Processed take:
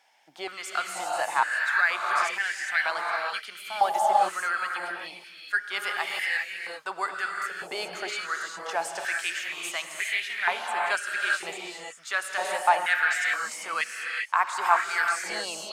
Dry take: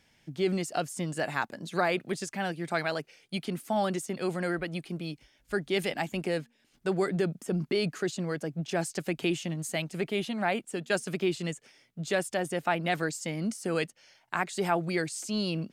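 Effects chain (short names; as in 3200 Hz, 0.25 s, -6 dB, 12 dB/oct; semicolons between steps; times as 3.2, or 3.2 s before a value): non-linear reverb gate 0.43 s rising, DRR 0 dB; stepped high-pass 2.1 Hz 800–1800 Hz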